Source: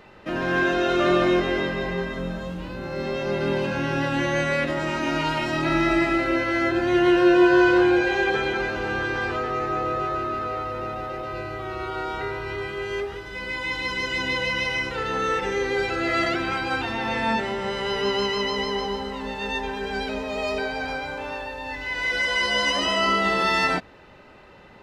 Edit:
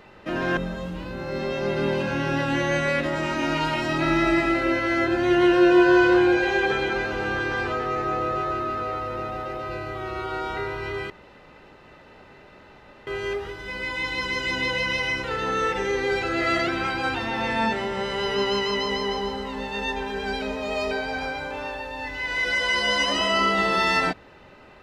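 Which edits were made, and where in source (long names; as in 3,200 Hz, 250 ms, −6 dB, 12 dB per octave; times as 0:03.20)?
0:00.57–0:02.21: remove
0:12.74: splice in room tone 1.97 s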